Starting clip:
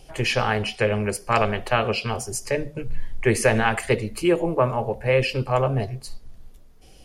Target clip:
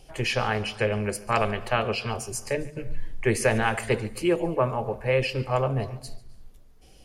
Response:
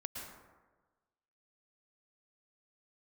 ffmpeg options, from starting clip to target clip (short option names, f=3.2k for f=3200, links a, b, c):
-filter_complex "[0:a]asplit=2[a][b];[1:a]atrim=start_sample=2205,afade=t=out:st=0.27:d=0.01,atrim=end_sample=12348,adelay=143[c];[b][c]afir=irnorm=-1:irlink=0,volume=-16dB[d];[a][d]amix=inputs=2:normalize=0,volume=-3.5dB"